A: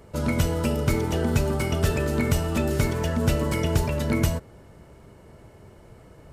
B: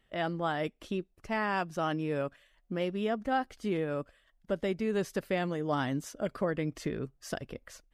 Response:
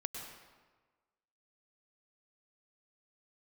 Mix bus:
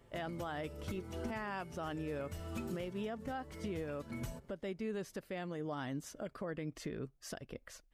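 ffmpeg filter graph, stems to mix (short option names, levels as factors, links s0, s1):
-filter_complex "[0:a]asplit=2[s0][s1];[s1]adelay=5.4,afreqshift=0.71[s2];[s0][s2]amix=inputs=2:normalize=1,volume=0.282[s3];[1:a]volume=0.708,asplit=2[s4][s5];[s5]apad=whole_len=279251[s6];[s3][s6]sidechaincompress=threshold=0.0141:ratio=8:attack=11:release=719[s7];[s7][s4]amix=inputs=2:normalize=0,alimiter=level_in=2.24:limit=0.0631:level=0:latency=1:release=279,volume=0.447"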